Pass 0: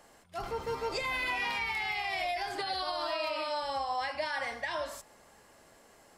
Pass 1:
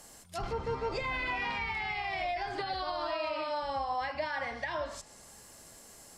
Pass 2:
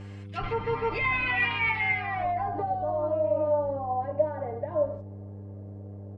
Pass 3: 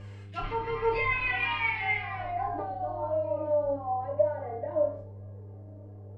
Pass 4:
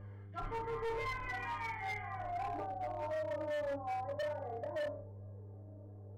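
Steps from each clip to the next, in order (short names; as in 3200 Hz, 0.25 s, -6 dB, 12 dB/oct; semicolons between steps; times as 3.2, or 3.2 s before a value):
treble ducked by the level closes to 2100 Hz, closed at -32.5 dBFS; tone controls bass +7 dB, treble +14 dB
low-pass sweep 2500 Hz -> 570 Hz, 1.75–2.77; comb 6.7 ms, depth 93%; buzz 100 Hz, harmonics 5, -41 dBFS -8 dB/oct
flange 0.95 Hz, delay 1.7 ms, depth 1.7 ms, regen +37%; flutter echo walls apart 4.9 m, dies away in 0.37 s
polynomial smoothing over 41 samples; hard clip -29 dBFS, distortion -8 dB; gain -6 dB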